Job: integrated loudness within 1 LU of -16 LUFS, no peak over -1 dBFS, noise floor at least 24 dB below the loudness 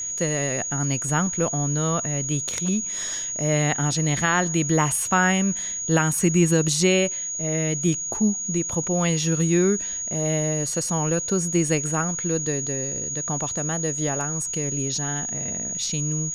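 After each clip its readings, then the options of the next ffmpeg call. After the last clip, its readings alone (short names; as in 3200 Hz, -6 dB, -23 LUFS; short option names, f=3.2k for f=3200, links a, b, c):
steady tone 6700 Hz; tone level -27 dBFS; loudness -22.5 LUFS; peak -8.0 dBFS; loudness target -16.0 LUFS
-> -af "bandreject=f=6.7k:w=30"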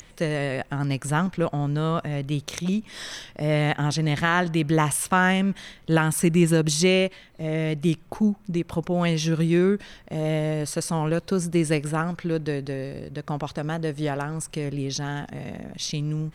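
steady tone none; loudness -25.0 LUFS; peak -9.0 dBFS; loudness target -16.0 LUFS
-> -af "volume=9dB,alimiter=limit=-1dB:level=0:latency=1"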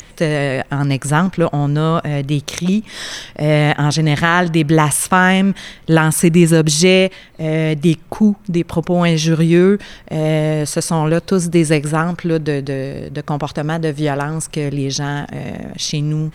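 loudness -16.0 LUFS; peak -1.0 dBFS; noise floor -41 dBFS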